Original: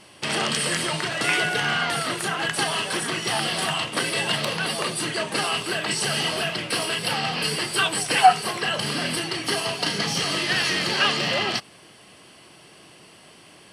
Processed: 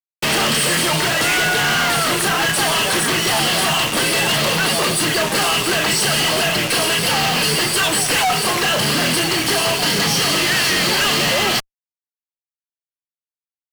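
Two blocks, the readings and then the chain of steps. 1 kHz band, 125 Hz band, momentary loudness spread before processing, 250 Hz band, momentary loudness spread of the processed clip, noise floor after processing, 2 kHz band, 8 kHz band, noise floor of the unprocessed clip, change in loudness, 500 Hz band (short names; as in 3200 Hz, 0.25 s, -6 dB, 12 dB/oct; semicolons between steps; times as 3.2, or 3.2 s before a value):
+4.0 dB, +8.0 dB, 5 LU, +8.0 dB, 2 LU, under -85 dBFS, +7.0 dB, +10.0 dB, -50 dBFS, +7.5 dB, +7.5 dB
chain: fuzz box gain 40 dB, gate -35 dBFS; gain -2 dB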